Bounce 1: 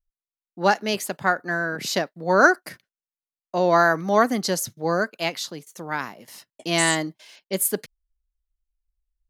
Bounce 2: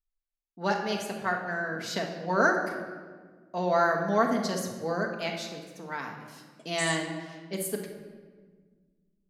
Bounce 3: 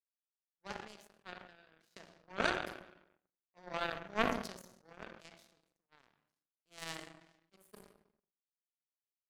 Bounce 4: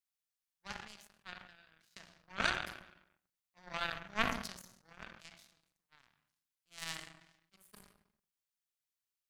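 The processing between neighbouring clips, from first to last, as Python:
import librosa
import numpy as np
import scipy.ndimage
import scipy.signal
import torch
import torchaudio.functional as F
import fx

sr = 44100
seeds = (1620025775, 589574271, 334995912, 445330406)

y1 = fx.high_shelf(x, sr, hz=11000.0, db=-10.5)
y1 = fx.room_shoebox(y1, sr, seeds[0], volume_m3=1600.0, walls='mixed', distance_m=1.6)
y1 = F.gain(torch.from_numpy(y1), -9.0).numpy()
y2 = fx.power_curve(y1, sr, exponent=3.0)
y2 = fx.sustainer(y2, sr, db_per_s=66.0)
y2 = F.gain(torch.from_numpy(y2), -1.5).numpy()
y3 = fx.peak_eq(y2, sr, hz=430.0, db=-13.0, octaves=1.9)
y3 = F.gain(torch.from_numpy(y3), 3.5).numpy()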